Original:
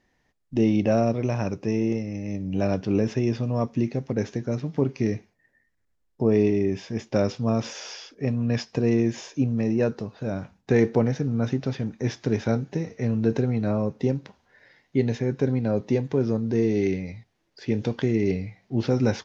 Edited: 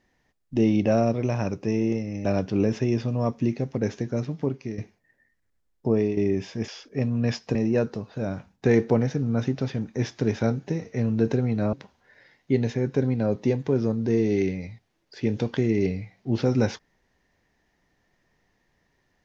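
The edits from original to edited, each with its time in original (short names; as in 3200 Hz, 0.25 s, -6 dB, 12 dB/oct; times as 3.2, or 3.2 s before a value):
2.25–2.6 cut
4.59–5.13 fade out, to -12 dB
6.22–6.52 fade out, to -9 dB
7.03–7.94 cut
8.81–9.6 cut
13.78–14.18 cut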